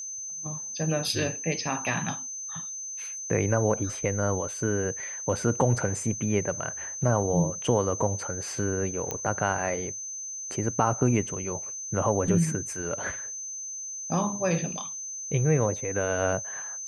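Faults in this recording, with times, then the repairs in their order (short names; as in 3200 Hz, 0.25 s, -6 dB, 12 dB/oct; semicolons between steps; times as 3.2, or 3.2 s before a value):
tone 6200 Hz -34 dBFS
9.11 pop -15 dBFS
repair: de-click; notch 6200 Hz, Q 30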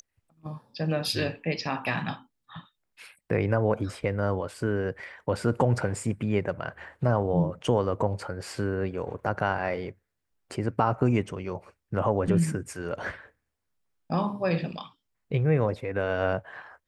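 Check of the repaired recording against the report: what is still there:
none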